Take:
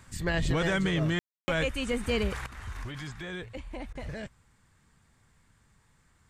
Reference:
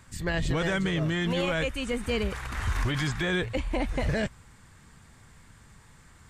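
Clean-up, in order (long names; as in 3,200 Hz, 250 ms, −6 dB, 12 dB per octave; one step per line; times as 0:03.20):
ambience match 0:01.19–0:01.48
repair the gap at 0:03.93, 20 ms
level 0 dB, from 0:02.46 +11 dB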